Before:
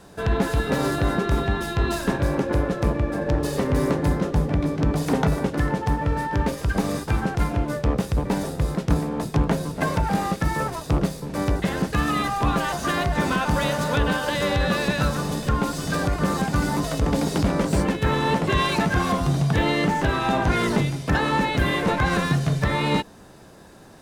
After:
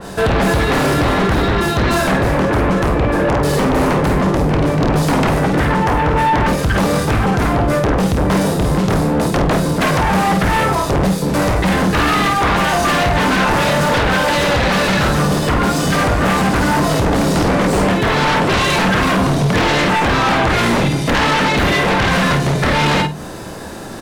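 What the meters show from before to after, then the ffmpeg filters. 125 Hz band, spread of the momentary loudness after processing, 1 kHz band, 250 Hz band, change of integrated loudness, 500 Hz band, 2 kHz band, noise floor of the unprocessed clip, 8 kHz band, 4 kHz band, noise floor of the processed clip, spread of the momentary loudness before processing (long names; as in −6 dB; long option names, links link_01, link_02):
+6.5 dB, 2 LU, +10.0 dB, +8.0 dB, +8.5 dB, +9.0 dB, +10.5 dB, −40 dBFS, +9.5 dB, +10.5 dB, −20 dBFS, 4 LU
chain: -filter_complex "[0:a]bandreject=frequency=50:width_type=h:width=6,bandreject=frequency=100:width_type=h:width=6,bandreject=frequency=150:width_type=h:width=6,aecho=1:1:27|53:0.422|0.531,asplit=2[link_01][link_02];[link_02]acompressor=threshold=-29dB:ratio=6,volume=1dB[link_03];[link_01][link_03]amix=inputs=2:normalize=0,aeval=exprs='0.501*sin(PI/2*3.55*val(0)/0.501)':channel_layout=same,asplit=2[link_04][link_05];[link_05]adelay=47,volume=-12dB[link_06];[link_04][link_06]amix=inputs=2:normalize=0,adynamicequalizer=threshold=0.0794:dfrequency=3400:dqfactor=0.7:tfrequency=3400:tqfactor=0.7:attack=5:release=100:ratio=0.375:range=2:mode=cutabove:tftype=highshelf,volume=-5dB"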